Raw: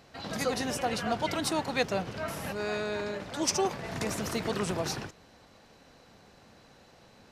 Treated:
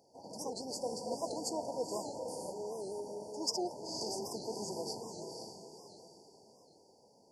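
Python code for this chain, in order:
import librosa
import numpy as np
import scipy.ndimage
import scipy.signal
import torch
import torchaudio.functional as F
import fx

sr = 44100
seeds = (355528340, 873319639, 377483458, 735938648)

y = fx.highpass(x, sr, hz=640.0, slope=6)
y = fx.echo_diffused(y, sr, ms=501, feedback_pct=41, wet_db=-4.5)
y = fx.formant_shift(y, sr, semitones=-3)
y = fx.brickwall_bandstop(y, sr, low_hz=1000.0, high_hz=4400.0)
y = fx.record_warp(y, sr, rpm=78.0, depth_cents=160.0)
y = F.gain(torch.from_numpy(y), -4.5).numpy()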